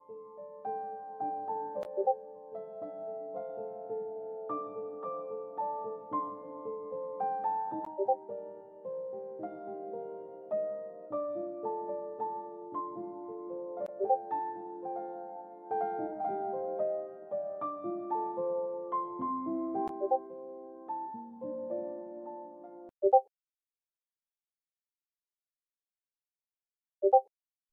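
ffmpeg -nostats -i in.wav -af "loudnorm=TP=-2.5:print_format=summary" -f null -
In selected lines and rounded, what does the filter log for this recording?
Input Integrated:    -35.5 LUFS
Input True Peak:     -11.6 dBTP
Input LRA:             3.9 LU
Input Threshold:     -45.8 LUFS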